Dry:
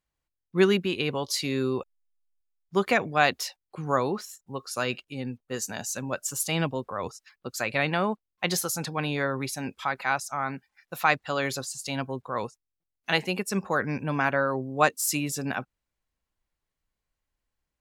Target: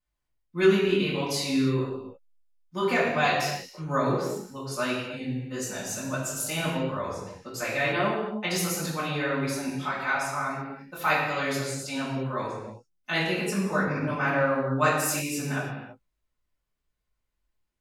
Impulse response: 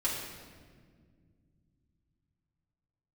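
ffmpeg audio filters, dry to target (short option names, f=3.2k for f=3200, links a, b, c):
-filter_complex "[0:a]flanger=delay=18:depth=4.9:speed=1.6[a];[1:a]atrim=start_sample=2205,afade=t=out:st=0.42:d=0.01,atrim=end_sample=18963,asetrate=48510,aresample=44100[b];[a][b]afir=irnorm=-1:irlink=0,volume=-2dB"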